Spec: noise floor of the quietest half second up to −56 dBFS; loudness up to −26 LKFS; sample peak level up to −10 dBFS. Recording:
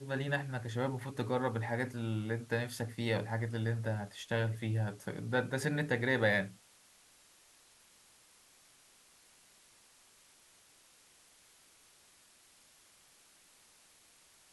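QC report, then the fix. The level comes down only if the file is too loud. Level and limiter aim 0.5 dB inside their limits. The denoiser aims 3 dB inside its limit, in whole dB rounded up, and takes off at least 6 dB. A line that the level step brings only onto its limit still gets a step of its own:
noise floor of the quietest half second −64 dBFS: in spec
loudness −35.0 LKFS: in spec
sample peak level −16.5 dBFS: in spec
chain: no processing needed

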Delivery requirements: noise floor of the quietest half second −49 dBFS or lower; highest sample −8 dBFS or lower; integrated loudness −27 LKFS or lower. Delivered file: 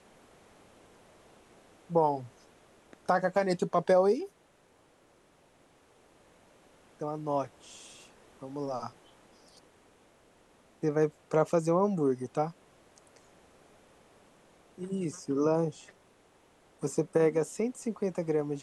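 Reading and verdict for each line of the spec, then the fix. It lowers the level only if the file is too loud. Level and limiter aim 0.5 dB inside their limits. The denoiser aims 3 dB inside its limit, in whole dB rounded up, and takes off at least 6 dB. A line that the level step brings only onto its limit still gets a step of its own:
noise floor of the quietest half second −64 dBFS: in spec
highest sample −13.5 dBFS: in spec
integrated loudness −30.5 LKFS: in spec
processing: no processing needed

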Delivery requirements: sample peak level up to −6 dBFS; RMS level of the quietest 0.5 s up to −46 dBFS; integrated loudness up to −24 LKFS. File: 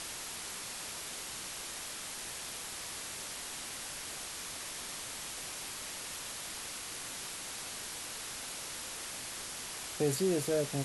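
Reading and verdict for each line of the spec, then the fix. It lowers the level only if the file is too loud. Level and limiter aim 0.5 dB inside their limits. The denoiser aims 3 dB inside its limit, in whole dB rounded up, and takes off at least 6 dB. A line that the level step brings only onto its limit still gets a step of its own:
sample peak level −19.0 dBFS: in spec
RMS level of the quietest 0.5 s −43 dBFS: out of spec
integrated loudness −38.0 LKFS: in spec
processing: broadband denoise 6 dB, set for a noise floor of −43 dBFS

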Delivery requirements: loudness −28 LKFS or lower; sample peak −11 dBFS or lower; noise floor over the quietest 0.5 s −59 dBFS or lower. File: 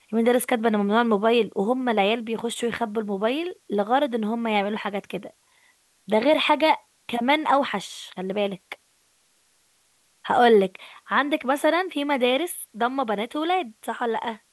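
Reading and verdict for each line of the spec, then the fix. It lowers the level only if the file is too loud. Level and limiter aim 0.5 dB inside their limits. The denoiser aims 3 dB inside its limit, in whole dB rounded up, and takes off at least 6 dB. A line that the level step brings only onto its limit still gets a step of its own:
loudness −23.5 LKFS: out of spec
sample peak −6.0 dBFS: out of spec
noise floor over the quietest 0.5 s −64 dBFS: in spec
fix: level −5 dB
brickwall limiter −11.5 dBFS

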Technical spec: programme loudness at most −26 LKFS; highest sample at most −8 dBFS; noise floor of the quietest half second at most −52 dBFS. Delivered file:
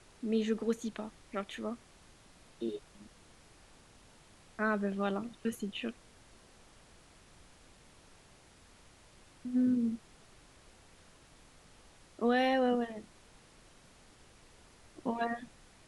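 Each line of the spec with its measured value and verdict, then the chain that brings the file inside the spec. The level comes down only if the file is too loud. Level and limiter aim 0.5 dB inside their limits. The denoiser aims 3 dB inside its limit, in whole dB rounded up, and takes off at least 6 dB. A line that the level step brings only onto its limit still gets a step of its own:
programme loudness −34.5 LKFS: in spec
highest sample −18.0 dBFS: in spec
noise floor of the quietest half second −60 dBFS: in spec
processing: no processing needed

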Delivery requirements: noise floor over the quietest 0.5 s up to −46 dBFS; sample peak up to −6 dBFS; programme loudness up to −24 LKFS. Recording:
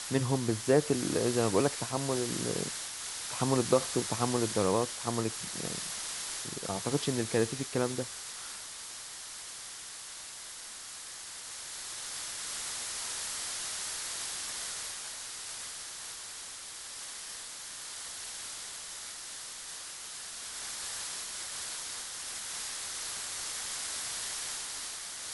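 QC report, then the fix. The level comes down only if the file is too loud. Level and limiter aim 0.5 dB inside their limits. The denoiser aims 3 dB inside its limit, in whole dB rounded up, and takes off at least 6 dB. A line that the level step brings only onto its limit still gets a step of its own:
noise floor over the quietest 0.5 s −45 dBFS: out of spec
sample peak −11.0 dBFS: in spec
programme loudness −34.0 LKFS: in spec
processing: broadband denoise 6 dB, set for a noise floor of −45 dBFS

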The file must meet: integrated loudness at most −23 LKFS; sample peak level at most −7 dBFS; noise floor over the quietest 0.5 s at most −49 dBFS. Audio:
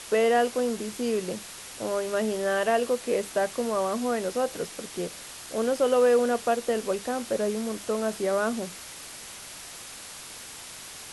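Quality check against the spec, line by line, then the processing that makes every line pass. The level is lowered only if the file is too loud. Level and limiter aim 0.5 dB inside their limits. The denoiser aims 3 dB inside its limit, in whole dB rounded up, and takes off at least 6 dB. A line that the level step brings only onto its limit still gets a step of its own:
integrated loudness −27.0 LKFS: in spec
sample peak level −13.0 dBFS: in spec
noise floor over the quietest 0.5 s −42 dBFS: out of spec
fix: broadband denoise 10 dB, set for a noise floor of −42 dBFS

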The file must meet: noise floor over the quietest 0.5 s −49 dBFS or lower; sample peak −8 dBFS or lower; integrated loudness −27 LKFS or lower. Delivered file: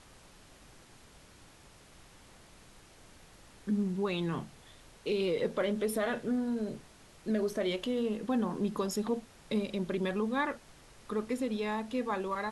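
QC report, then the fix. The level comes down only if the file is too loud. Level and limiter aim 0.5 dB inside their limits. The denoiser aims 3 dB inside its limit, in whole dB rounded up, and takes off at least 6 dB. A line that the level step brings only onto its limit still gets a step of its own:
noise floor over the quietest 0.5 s −57 dBFS: in spec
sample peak −20.5 dBFS: in spec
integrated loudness −33.5 LKFS: in spec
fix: no processing needed

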